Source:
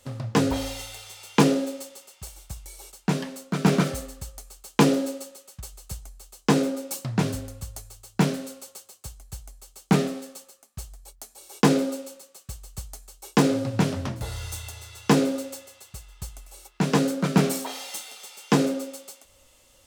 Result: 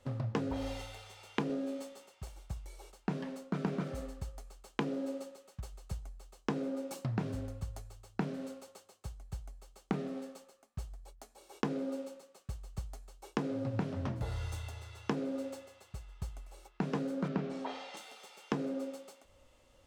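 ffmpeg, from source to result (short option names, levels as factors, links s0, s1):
-filter_complex "[0:a]asettb=1/sr,asplit=3[s0][s1][s2];[s0]atrim=end=1.484[s3];[s1]atrim=start=1.48:end=2.09,asetpts=PTS-STARTPTS,afade=t=in:d=0.004:c=qsin,afade=t=out:st=0.606:d=0.004:c=qsin,asplit=2[s4][s5];[s5]adelay=14,volume=0.708[s6];[s4][s6]amix=inputs=2:normalize=0,atrim=end_sample=26901[s7];[s2]atrim=start=2.086[s8];[s3][s7]acrossfade=d=0.004:c1=hsin:c2=qsin[s9];[s9][s8]acrossfade=d=0.004:c1=qsin:c2=hsin,asettb=1/sr,asplit=3[s10][s11][s12];[s10]atrim=end=17.284[s13];[s11]atrim=start=17.28:end=17.97,asetpts=PTS-STARTPTS,afade=t=in:d=0.004:c=qsin,afade=t=out:st=0.686:d=0.004:c=qsin,lowpass=4600[s14];[s12]atrim=start=17.966[s15];[s13][s14]acrossfade=d=0.004:c1=hsin:c2=qsin[s16];[s16][s15]acrossfade=d=0.004:c1=qsin:c2=hsin,lowpass=f=1500:p=1,acompressor=threshold=0.0398:ratio=16,volume=0.75"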